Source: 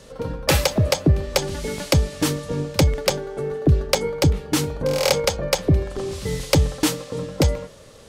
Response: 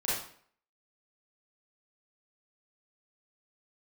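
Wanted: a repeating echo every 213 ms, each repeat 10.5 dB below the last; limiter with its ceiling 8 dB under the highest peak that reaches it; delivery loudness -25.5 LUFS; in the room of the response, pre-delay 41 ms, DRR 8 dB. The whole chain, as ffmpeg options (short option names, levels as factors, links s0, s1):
-filter_complex "[0:a]alimiter=limit=0.188:level=0:latency=1,aecho=1:1:213|426|639:0.299|0.0896|0.0269,asplit=2[s0][s1];[1:a]atrim=start_sample=2205,adelay=41[s2];[s1][s2]afir=irnorm=-1:irlink=0,volume=0.168[s3];[s0][s3]amix=inputs=2:normalize=0,volume=0.944"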